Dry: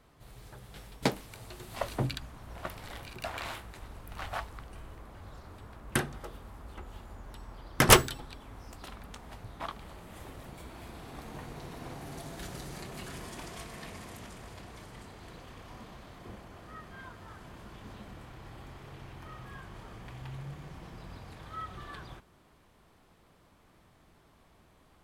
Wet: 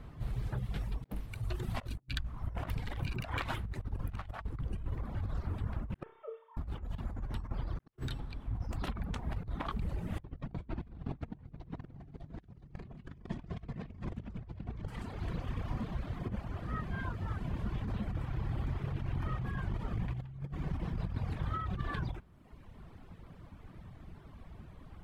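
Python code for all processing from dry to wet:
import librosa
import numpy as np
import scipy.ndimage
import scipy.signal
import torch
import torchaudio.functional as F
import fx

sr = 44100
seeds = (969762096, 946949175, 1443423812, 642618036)

y = fx.chain(x, sr, fx.sine_speech(),
    fx.comb_fb(f0_hz=450.0, decay_s=0.16, harmonics='all', damping=0.0, mix_pct=90),
    fx.room_flutter(wall_m=5.3, rt60_s=0.56), at=(6.03, 6.57))
y = fx.chain(y, sr, fx.lowpass(hz=5400.0, slope=12),
    fx.low_shelf(hz=410.0, db=9.5), at=(10.19, 14.88))
y = fx.dereverb_blind(y, sr, rt60_s=1.1)
y = fx.bass_treble(y, sr, bass_db=12, treble_db=-10)
y = fx.over_compress(y, sr, threshold_db=-39.0, ratio=-0.5)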